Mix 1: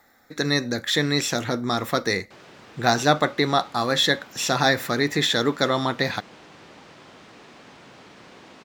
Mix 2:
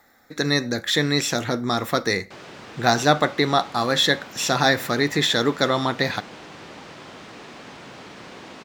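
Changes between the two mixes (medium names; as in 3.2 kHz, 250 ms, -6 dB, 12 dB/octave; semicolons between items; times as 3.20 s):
background +6.0 dB; reverb: on, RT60 0.45 s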